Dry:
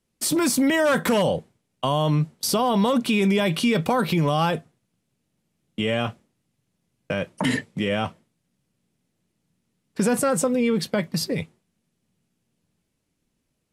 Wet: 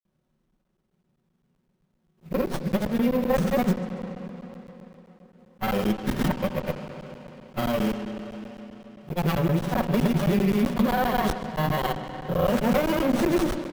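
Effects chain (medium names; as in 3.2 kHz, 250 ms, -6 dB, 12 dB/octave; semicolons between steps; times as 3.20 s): reverse the whole clip; comb 5.4 ms, depth 69%; compression, threshold -19 dBFS, peak gain reduction 6.5 dB; granulator; careless resampling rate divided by 3×, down none, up hold; filtered feedback delay 139 ms, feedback 84%, low-pass 4.8 kHz, level -21 dB; spring tank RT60 3.7 s, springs 33/58 ms, chirp 40 ms, DRR 7.5 dB; crackling interface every 0.13 s, samples 512, zero, from 0.51 s; sliding maximum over 17 samples; trim +2 dB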